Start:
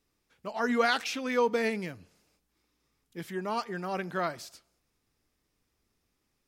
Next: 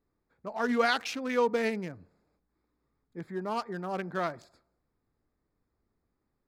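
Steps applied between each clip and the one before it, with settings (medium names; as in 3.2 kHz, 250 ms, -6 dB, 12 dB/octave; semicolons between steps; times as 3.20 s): local Wiener filter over 15 samples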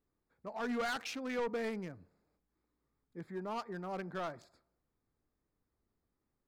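saturation -26 dBFS, distortion -10 dB; trim -5 dB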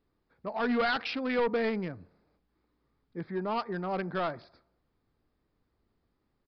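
resampled via 11.025 kHz; trim +8 dB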